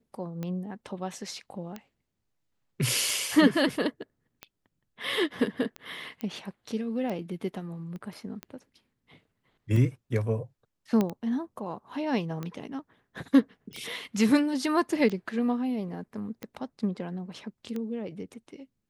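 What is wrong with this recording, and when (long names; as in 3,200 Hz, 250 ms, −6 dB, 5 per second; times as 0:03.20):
scratch tick 45 rpm −22 dBFS
0:06.21: click −22 dBFS
0:07.96: click −30 dBFS
0:11.01: click −14 dBFS
0:13.73: click −30 dBFS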